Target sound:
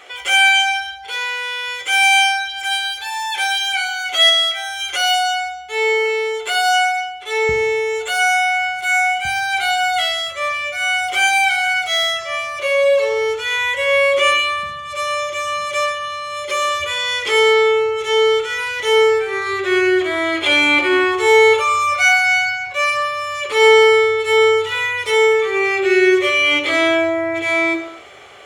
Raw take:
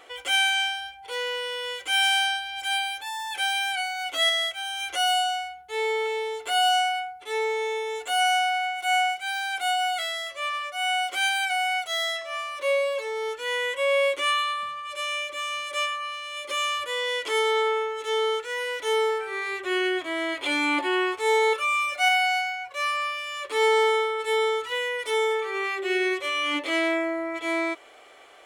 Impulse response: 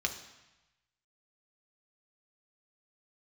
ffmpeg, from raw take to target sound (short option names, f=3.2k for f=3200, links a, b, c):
-filter_complex "[0:a]asetnsamples=n=441:p=0,asendcmd='7.49 equalizer g 8.5;9.25 equalizer g 14.5',equalizer=f=110:t=o:w=1.7:g=-5.5[a];[1:a]atrim=start_sample=2205,afade=t=out:st=0.37:d=0.01,atrim=end_sample=16758[b];[a][b]afir=irnorm=-1:irlink=0,volume=5.5dB"